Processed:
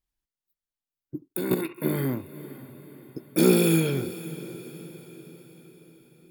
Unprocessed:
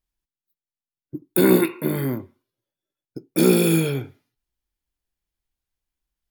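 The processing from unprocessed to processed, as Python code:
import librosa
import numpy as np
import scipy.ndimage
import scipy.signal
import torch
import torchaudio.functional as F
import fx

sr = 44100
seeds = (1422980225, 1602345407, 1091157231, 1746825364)

y = fx.level_steps(x, sr, step_db=13, at=(1.28, 1.78))
y = fx.echo_diffused(y, sr, ms=519, feedback_pct=52, wet_db=-15)
y = y * 10.0 ** (-2.5 / 20.0)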